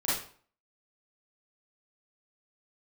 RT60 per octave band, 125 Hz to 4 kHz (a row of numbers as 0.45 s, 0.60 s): 0.45 s, 0.45 s, 0.45 s, 0.45 s, 0.40 s, 0.40 s